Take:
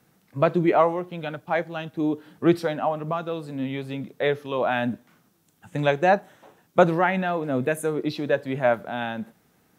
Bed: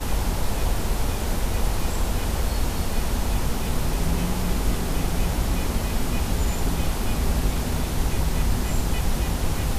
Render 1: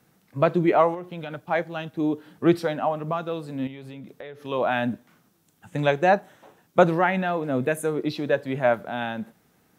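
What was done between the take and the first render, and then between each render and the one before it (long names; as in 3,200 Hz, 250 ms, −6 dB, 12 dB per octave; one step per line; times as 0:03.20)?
0:00.94–0:01.35: downward compressor, threshold −29 dBFS
0:03.67–0:04.45: downward compressor 8 to 1, threshold −36 dBFS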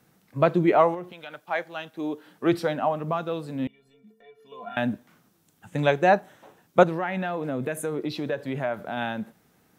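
0:01.11–0:02.51: high-pass filter 1,300 Hz → 360 Hz 6 dB per octave
0:03.67–0:04.77: stiff-string resonator 210 Hz, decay 0.33 s, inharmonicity 0.03
0:06.83–0:08.97: downward compressor 3 to 1, threshold −25 dBFS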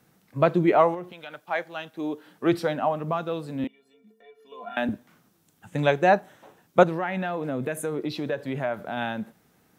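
0:03.64–0:04.89: high-pass filter 210 Hz 24 dB per octave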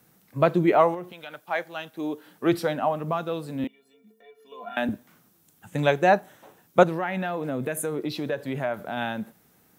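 high-shelf EQ 10,000 Hz +11 dB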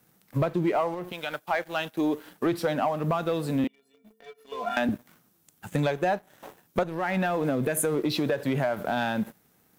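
downward compressor 8 to 1, threshold −29 dBFS, peak gain reduction 18.5 dB
leveller curve on the samples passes 2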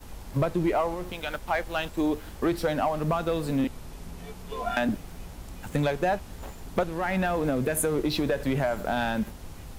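mix in bed −18 dB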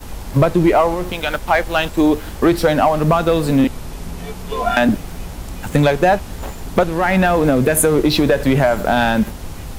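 level +12 dB
brickwall limiter −3 dBFS, peak gain reduction 1.5 dB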